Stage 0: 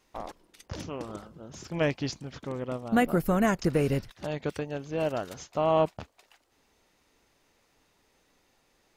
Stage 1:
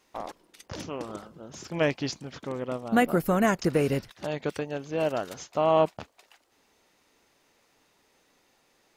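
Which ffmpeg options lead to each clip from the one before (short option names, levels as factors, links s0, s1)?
-af "lowshelf=f=98:g=-12,volume=1.33"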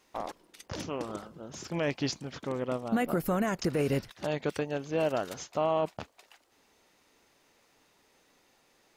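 -af "alimiter=limit=0.112:level=0:latency=1:release=73"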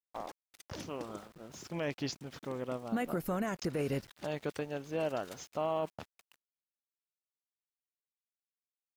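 -af "aeval=exprs='val(0)*gte(abs(val(0)),0.00355)':c=same,volume=0.531"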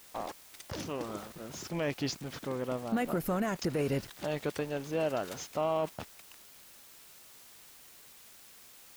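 -af "aeval=exprs='val(0)+0.5*0.00562*sgn(val(0))':c=same,volume=1.26"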